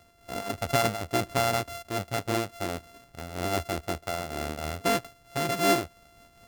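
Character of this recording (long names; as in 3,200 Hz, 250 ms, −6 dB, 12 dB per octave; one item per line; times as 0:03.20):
a buzz of ramps at a fixed pitch in blocks of 64 samples
amplitude modulation by smooth noise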